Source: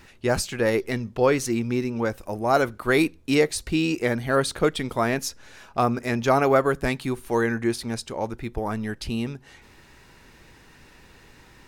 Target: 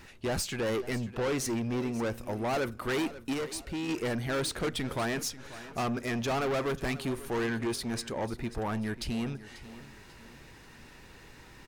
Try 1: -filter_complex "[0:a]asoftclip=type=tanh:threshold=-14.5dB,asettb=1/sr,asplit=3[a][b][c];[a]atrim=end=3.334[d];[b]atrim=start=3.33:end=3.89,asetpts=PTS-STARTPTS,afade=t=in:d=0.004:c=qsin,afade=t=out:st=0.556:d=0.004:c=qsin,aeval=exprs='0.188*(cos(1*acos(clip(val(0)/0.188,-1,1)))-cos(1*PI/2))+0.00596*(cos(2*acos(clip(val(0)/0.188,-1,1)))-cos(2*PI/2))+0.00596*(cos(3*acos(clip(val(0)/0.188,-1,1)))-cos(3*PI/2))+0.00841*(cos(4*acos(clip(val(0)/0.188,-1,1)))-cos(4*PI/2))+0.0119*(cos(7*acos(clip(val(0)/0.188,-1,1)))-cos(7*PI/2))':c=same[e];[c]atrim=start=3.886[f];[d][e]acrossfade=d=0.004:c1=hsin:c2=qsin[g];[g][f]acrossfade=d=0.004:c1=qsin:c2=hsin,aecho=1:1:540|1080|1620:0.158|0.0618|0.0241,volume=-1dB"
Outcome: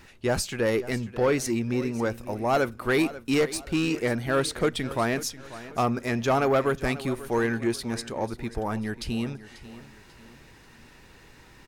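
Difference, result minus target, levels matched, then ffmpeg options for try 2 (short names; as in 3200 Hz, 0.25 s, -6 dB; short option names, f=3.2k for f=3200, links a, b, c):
soft clip: distortion -10 dB
-filter_complex "[0:a]asoftclip=type=tanh:threshold=-26.5dB,asettb=1/sr,asplit=3[a][b][c];[a]atrim=end=3.334[d];[b]atrim=start=3.33:end=3.89,asetpts=PTS-STARTPTS,afade=t=in:d=0.004:c=qsin,afade=t=out:st=0.556:d=0.004:c=qsin,aeval=exprs='0.188*(cos(1*acos(clip(val(0)/0.188,-1,1)))-cos(1*PI/2))+0.00596*(cos(2*acos(clip(val(0)/0.188,-1,1)))-cos(2*PI/2))+0.00596*(cos(3*acos(clip(val(0)/0.188,-1,1)))-cos(3*PI/2))+0.00841*(cos(4*acos(clip(val(0)/0.188,-1,1)))-cos(4*PI/2))+0.0119*(cos(7*acos(clip(val(0)/0.188,-1,1)))-cos(7*PI/2))':c=same[e];[c]atrim=start=3.886[f];[d][e]acrossfade=d=0.004:c1=hsin:c2=qsin[g];[g][f]acrossfade=d=0.004:c1=qsin:c2=hsin,aecho=1:1:540|1080|1620:0.158|0.0618|0.0241,volume=-1dB"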